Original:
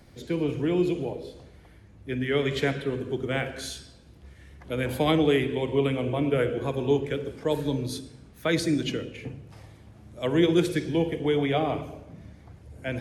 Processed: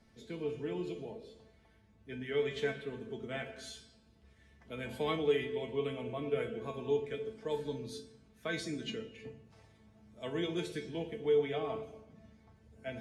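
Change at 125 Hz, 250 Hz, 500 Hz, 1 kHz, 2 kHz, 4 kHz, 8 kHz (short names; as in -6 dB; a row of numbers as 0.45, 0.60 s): -15.0, -14.5, -8.0, -11.0, -10.0, -10.0, -12.0 dB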